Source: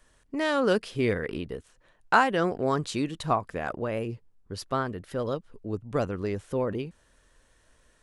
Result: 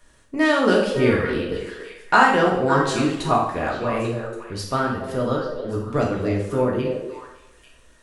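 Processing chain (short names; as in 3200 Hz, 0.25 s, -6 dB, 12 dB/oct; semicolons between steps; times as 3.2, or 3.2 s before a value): delay with a stepping band-pass 0.281 s, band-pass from 480 Hz, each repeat 1.4 oct, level -5.5 dB; two-slope reverb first 0.63 s, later 1.6 s, DRR -2.5 dB; gain +3 dB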